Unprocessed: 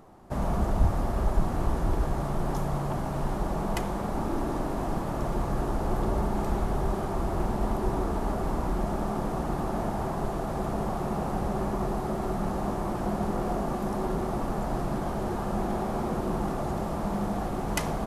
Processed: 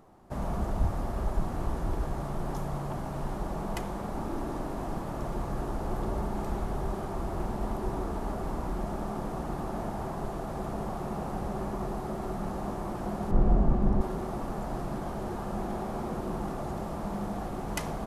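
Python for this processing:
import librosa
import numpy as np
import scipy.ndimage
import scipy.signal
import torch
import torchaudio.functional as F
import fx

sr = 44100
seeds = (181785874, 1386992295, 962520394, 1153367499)

y = fx.riaa(x, sr, side='playback', at=(13.31, 14.01))
y = F.gain(torch.from_numpy(y), -4.5).numpy()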